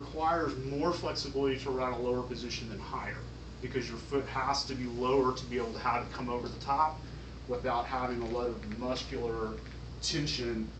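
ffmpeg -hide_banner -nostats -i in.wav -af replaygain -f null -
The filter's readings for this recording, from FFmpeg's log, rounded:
track_gain = +13.5 dB
track_peak = 0.112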